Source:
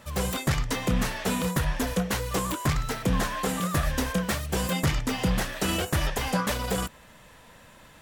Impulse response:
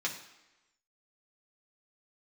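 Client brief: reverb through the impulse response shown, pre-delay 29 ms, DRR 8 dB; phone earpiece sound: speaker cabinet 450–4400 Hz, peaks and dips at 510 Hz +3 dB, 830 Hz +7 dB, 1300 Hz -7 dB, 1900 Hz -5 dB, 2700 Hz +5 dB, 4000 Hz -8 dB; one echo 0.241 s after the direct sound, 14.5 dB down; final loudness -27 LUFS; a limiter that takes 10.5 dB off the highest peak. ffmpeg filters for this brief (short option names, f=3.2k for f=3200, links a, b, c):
-filter_complex "[0:a]alimiter=level_in=2.5dB:limit=-24dB:level=0:latency=1,volume=-2.5dB,aecho=1:1:241:0.188,asplit=2[a][b];[1:a]atrim=start_sample=2205,adelay=29[c];[b][c]afir=irnorm=-1:irlink=0,volume=-13dB[d];[a][d]amix=inputs=2:normalize=0,highpass=450,equalizer=f=510:t=q:w=4:g=3,equalizer=f=830:t=q:w=4:g=7,equalizer=f=1.3k:t=q:w=4:g=-7,equalizer=f=1.9k:t=q:w=4:g=-5,equalizer=f=2.7k:t=q:w=4:g=5,equalizer=f=4k:t=q:w=4:g=-8,lowpass=f=4.4k:w=0.5412,lowpass=f=4.4k:w=1.3066,volume=11dB"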